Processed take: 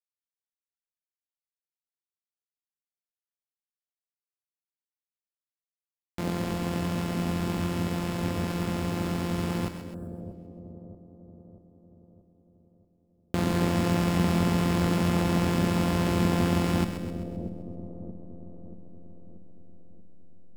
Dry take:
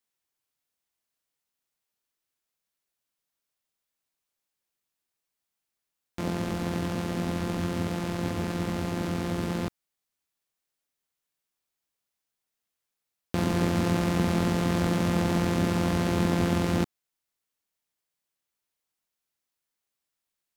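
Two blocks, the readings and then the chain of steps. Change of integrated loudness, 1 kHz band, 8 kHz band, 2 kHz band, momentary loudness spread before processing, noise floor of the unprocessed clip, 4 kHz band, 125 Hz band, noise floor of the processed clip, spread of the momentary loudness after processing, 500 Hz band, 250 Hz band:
0.0 dB, +0.5 dB, 0.0 dB, 0.0 dB, 6 LU, below −85 dBFS, +1.0 dB, +1.0 dB, below −85 dBFS, 18 LU, 0.0 dB, +0.5 dB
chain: hold until the input has moved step −38.5 dBFS
notch filter 5,900 Hz, Q 27
echo with a time of its own for lows and highs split 610 Hz, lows 633 ms, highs 130 ms, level −8.5 dB
healed spectral selection 0:09.97–0:10.32, 1,800–7,300 Hz after

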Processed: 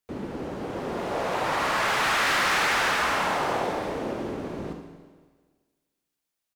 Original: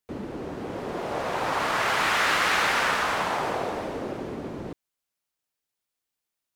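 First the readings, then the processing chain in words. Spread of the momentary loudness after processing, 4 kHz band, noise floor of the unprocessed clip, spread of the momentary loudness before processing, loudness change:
13 LU, +0.5 dB, −85 dBFS, 14 LU, 0.0 dB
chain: single-tap delay 76 ms −10.5 dB
four-comb reverb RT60 1.5 s, combs from 32 ms, DRR 5.5 dB
gain into a clipping stage and back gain 19.5 dB

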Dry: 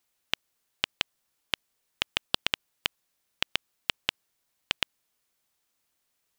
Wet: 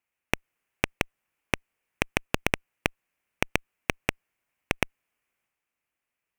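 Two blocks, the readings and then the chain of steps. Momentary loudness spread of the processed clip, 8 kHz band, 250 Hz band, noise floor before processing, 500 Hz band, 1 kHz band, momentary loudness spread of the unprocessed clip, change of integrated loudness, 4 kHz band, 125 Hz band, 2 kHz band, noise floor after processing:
5 LU, +4.5 dB, +14.0 dB, −78 dBFS, +11.5 dB, +6.0 dB, 5 LU, +1.5 dB, −7.5 dB, +14.5 dB, +4.5 dB, below −85 dBFS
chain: harmonic generator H 3 −9 dB, 6 −12 dB, 7 −27 dB, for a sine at −3 dBFS
transient designer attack 0 dB, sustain +5 dB
high shelf with overshoot 3,100 Hz −7 dB, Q 3
level +2.5 dB

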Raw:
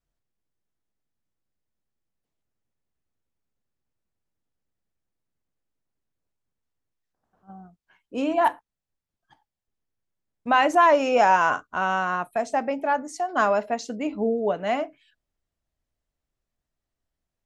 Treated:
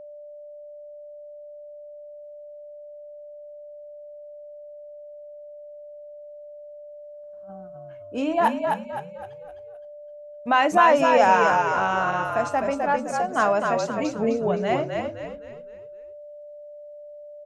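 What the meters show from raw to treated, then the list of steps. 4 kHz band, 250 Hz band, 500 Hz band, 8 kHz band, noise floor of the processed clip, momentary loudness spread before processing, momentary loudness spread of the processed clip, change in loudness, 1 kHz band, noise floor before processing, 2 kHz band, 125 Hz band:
+1.0 dB, +1.5 dB, +2.0 dB, +1.5 dB, −42 dBFS, 11 LU, 24 LU, +1.0 dB, +1.5 dB, below −85 dBFS, +1.5 dB, can't be measured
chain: echo with shifted repeats 258 ms, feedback 41%, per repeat −44 Hz, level −4 dB
steady tone 590 Hz −39 dBFS

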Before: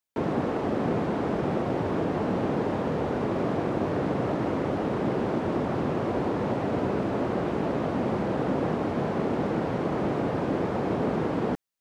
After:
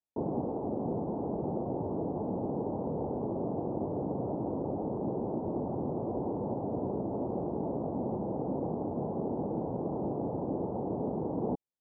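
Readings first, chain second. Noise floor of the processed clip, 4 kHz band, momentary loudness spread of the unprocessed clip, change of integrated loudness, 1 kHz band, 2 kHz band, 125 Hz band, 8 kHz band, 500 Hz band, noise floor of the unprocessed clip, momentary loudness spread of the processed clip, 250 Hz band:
−37 dBFS, below −40 dB, 1 LU, −6.5 dB, −8.0 dB, below −35 dB, −6.5 dB, can't be measured, −6.5 dB, −30 dBFS, 1 LU, −6.0 dB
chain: speech leveller 0.5 s
elliptic low-pass filter 890 Hz, stop band 70 dB
level −6 dB

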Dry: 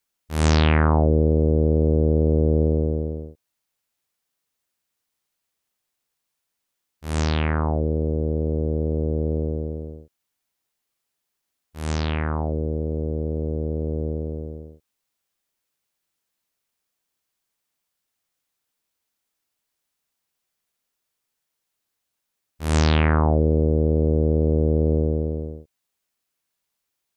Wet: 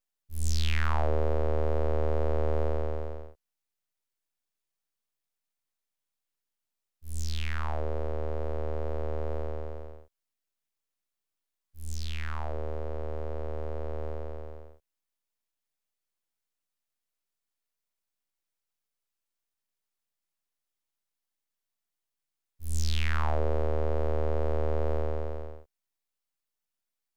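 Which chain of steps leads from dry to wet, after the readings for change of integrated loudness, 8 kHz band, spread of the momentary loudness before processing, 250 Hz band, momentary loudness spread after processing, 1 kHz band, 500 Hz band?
−11.0 dB, −5.5 dB, 13 LU, −18.0 dB, 13 LU, −6.5 dB, −8.5 dB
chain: full-wave rectification
level −6.5 dB

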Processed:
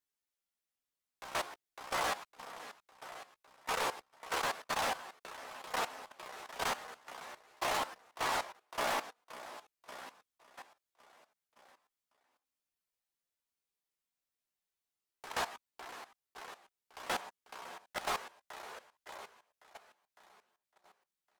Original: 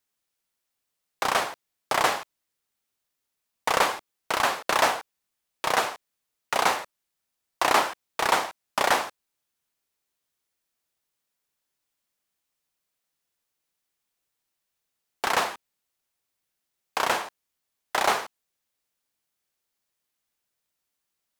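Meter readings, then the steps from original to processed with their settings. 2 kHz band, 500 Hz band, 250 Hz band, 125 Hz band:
−11.5 dB, −11.5 dB, −11.0 dB, −9.5 dB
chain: on a send: repeating echo 556 ms, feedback 51%, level −10.5 dB
on the sum: hard clipping −21.5 dBFS, distortion −8 dB
multi-voice chorus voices 4, 0.15 Hz, delay 14 ms, depth 2.8 ms
output level in coarse steps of 15 dB
level −3 dB

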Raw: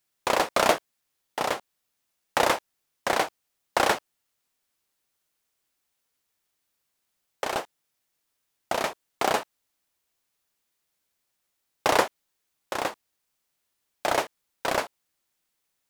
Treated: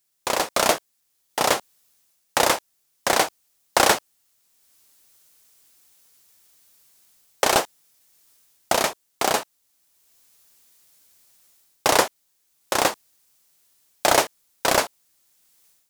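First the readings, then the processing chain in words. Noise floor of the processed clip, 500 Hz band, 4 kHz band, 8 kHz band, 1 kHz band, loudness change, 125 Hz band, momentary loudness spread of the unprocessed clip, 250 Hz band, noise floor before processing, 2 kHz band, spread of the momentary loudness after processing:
−70 dBFS, +4.0 dB, +7.5 dB, +11.0 dB, +4.0 dB, +5.0 dB, +5.0 dB, 11 LU, +4.0 dB, −79 dBFS, +4.5 dB, 8 LU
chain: bass and treble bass +1 dB, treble +8 dB
automatic gain control gain up to 14 dB
level −1 dB

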